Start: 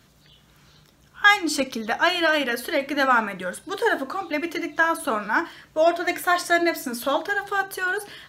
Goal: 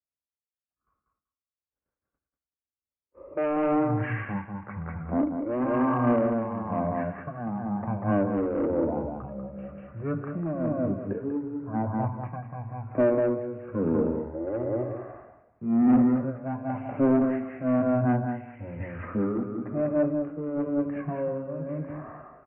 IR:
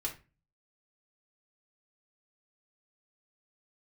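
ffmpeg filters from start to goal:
-filter_complex "[0:a]lowpass=4k,agate=range=-47dB:threshold=-49dB:ratio=16:detection=peak,highpass=140,equalizer=f=760:t=o:w=0.32:g=8,acrossover=split=300[a][b];[a]acompressor=threshold=-43dB:ratio=6[c];[c][b]amix=inputs=2:normalize=0,aecho=1:1:71|142|213|284:0.668|0.167|0.0418|0.0104,aresample=16000,asoftclip=type=tanh:threshold=-12.5dB,aresample=44100,asetrate=16273,aresample=44100,tremolo=f=1:d=0.64,acontrast=41,volume=-7dB"

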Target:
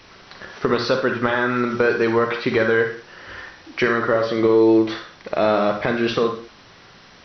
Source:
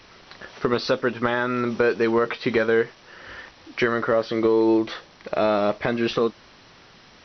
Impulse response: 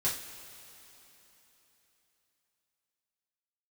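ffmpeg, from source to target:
-filter_complex "[0:a]asplit=2[a][b];[b]equalizer=f=1.4k:w=1.4:g=5.5[c];[1:a]atrim=start_sample=2205,afade=t=out:st=0.22:d=0.01,atrim=end_sample=10143,adelay=45[d];[c][d]afir=irnorm=-1:irlink=0,volume=-12.5dB[e];[a][e]amix=inputs=2:normalize=0,volume=2dB"

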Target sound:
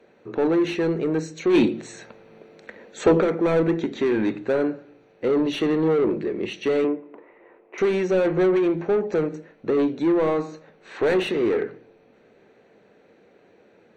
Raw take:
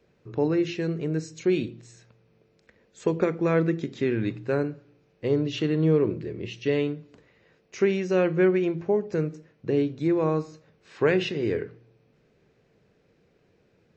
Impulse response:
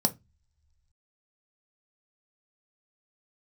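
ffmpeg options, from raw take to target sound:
-filter_complex "[0:a]asettb=1/sr,asplit=3[a][b][c];[a]atrim=end=6.844[d];[b]atrim=start=6.84:end=7.78,asetpts=PTS-STARTPTS,afade=t=in:d=0.004:c=qsin,afade=t=out:st=0.936:d=0.004:c=qsin,highpass=320,equalizer=f=340:t=q:w=4:g=8,equalizer=f=1k:t=q:w=4:g=6,equalizer=f=1.6k:t=q:w=4:g=-8,lowpass=f=2.2k:w=0.5412,lowpass=f=2.2k:w=1.3066[e];[c]atrim=start=7.776[f];[d][e]acrossfade=d=0.004:c1=hsin:c2=qsin[g];[g][f]acrossfade=d=0.004:c1=qsin:c2=hsin,asplit=2[h][i];[i]highpass=f=720:p=1,volume=24dB,asoftclip=type=tanh:threshold=-10dB[j];[h][j]amix=inputs=2:normalize=0,lowpass=f=1.3k:p=1,volume=-6dB,asplit=2[k][l];[1:a]atrim=start_sample=2205,highshelf=f=3.8k:g=11.5[m];[l][m]afir=irnorm=-1:irlink=0,volume=-21dB[n];[k][n]amix=inputs=2:normalize=0,asplit=3[o][p][q];[o]afade=t=out:st=1.53:d=0.02[r];[p]acontrast=80,afade=t=in:st=1.53:d=0.02,afade=t=out:st=3.2:d=0.02[s];[q]afade=t=in:st=3.2:d=0.02[t];[r][s][t]amix=inputs=3:normalize=0,volume=-4dB"

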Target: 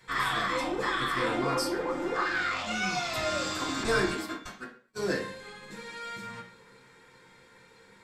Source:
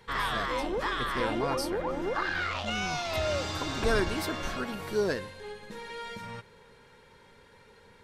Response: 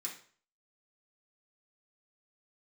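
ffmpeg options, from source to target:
-filter_complex "[0:a]asettb=1/sr,asplit=3[a][b][c];[a]atrim=end=3.834[d];[b]atrim=start=3.83:end=5,asetpts=PTS-STARTPTS,afade=t=in:d=0.004:c=qsin,afade=t=out:st=1.166:d=0.004:c=qsin,agate=range=-43dB:threshold=-30dB:ratio=16:detection=peak[e];[c]atrim=start=4.996[f];[d][e]acrossfade=d=0.004:c1=hsin:c2=qsin[g];[g][f]acrossfade=d=0.004:c1=qsin:c2=hsin[h];[1:a]atrim=start_sample=2205,afade=t=out:st=0.32:d=0.01,atrim=end_sample=14553[i];[h][i]afir=irnorm=-1:irlink=0,volume=3dB"

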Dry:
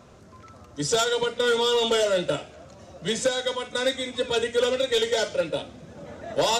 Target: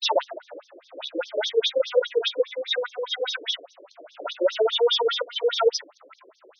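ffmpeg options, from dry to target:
-af "areverse,afftfilt=real='re*between(b*sr/1024,380*pow(4700/380,0.5+0.5*sin(2*PI*4.9*pts/sr))/1.41,380*pow(4700/380,0.5+0.5*sin(2*PI*4.9*pts/sr))*1.41)':imag='im*between(b*sr/1024,380*pow(4700/380,0.5+0.5*sin(2*PI*4.9*pts/sr))/1.41,380*pow(4700/380,0.5+0.5*sin(2*PI*4.9*pts/sr))*1.41)':win_size=1024:overlap=0.75,volume=5.5dB"

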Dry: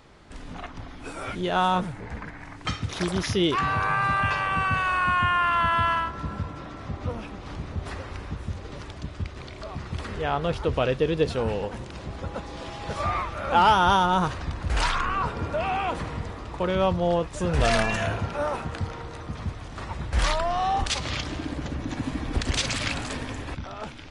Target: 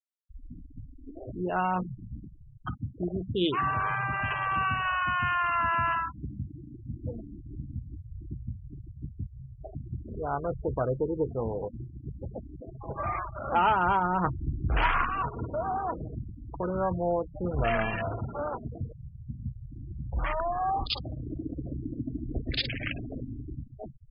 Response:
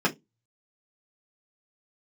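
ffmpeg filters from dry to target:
-filter_complex "[0:a]afwtdn=0.0355,aresample=11025,aresample=44100,asplit=2[a][b];[b]acompressor=threshold=-32dB:ratio=12,volume=-1.5dB[c];[a][c]amix=inputs=2:normalize=0,highshelf=f=2.9k:g=8.5,asettb=1/sr,asplit=3[d][e][f];[d]atrim=end=14.244[g];[e]atrim=start=14.24:end=15.05,asetpts=PTS-STARTPTS,afade=t=in:d=0.004:c=qsin,afade=t=out:st=0.806:d=0.004:c=qsin,acontrast=29[h];[f]atrim=start=15.046[i];[g][h]acrossfade=d=0.004:c1=hsin:c2=qsin[j];[j][i]acrossfade=d=0.004:c1=qsin:c2=hsin,asplit=2[k][l];[1:a]atrim=start_sample=2205,asetrate=32634,aresample=44100[m];[l][m]afir=irnorm=-1:irlink=0,volume=-26.5dB[n];[k][n]amix=inputs=2:normalize=0,afftfilt=real='re*gte(hypot(re,im),0.0708)':imag='im*gte(hypot(re,im),0.0708)':win_size=1024:overlap=0.75,volume=-7.5dB" -ar 48000 -c:a libmp3lame -b:a 48k

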